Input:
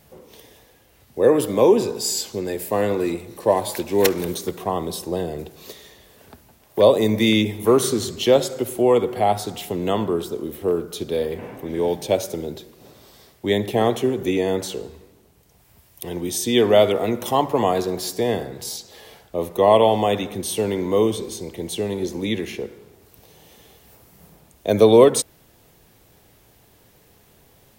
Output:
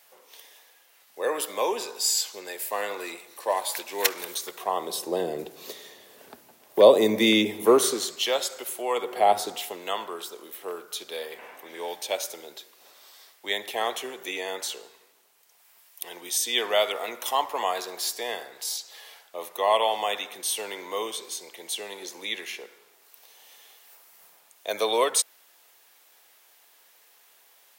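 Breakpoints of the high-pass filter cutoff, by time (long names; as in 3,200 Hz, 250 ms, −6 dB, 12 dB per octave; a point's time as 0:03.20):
0:04.46 970 Hz
0:05.32 290 Hz
0:07.62 290 Hz
0:08.31 1,000 Hz
0:08.90 1,000 Hz
0:09.39 360 Hz
0:09.84 1,000 Hz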